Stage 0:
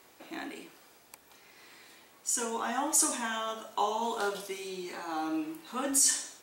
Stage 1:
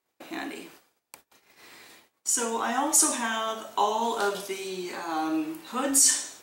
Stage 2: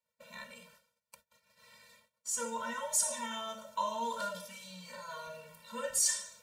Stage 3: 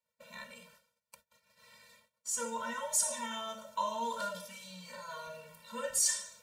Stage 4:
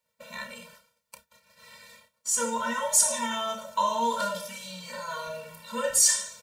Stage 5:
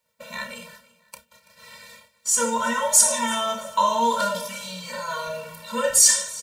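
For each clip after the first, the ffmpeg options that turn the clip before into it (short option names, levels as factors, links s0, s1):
-af "agate=range=0.0398:threshold=0.00178:ratio=16:detection=peak,volume=1.78"
-af "afftfilt=real='re*eq(mod(floor(b*sr/1024/220),2),0)':imag='im*eq(mod(floor(b*sr/1024/220),2),0)':win_size=1024:overlap=0.75,volume=0.501"
-af anull
-filter_complex "[0:a]asplit=2[s0][s1];[s1]adelay=30,volume=0.335[s2];[s0][s2]amix=inputs=2:normalize=0,volume=2.66"
-af "aecho=1:1:333|666:0.0891|0.0258,volume=1.88"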